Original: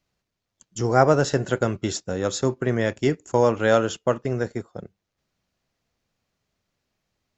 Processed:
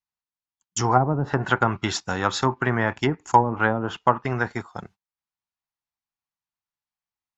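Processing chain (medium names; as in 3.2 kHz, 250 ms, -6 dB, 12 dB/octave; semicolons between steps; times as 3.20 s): gate -47 dBFS, range -27 dB; low-pass that closes with the level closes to 340 Hz, closed at -13.5 dBFS; resonant low shelf 690 Hz -8 dB, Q 3; trim +8.5 dB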